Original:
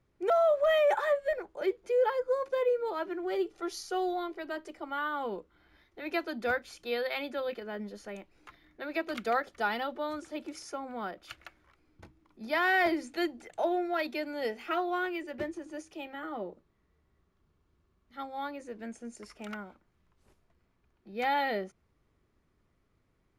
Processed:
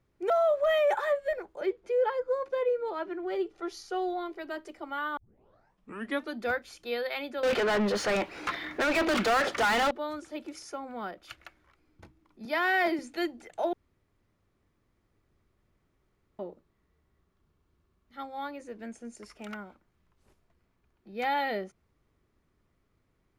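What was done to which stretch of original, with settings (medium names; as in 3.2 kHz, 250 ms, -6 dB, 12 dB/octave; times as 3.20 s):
1.61–4.26 s: treble shelf 6.3 kHz -10.5 dB
5.17 s: tape start 1.18 s
7.43–9.91 s: overdrive pedal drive 36 dB, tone 2.7 kHz, clips at -18.5 dBFS
12.45–12.99 s: high-pass 150 Hz 24 dB/octave
13.73–16.39 s: room tone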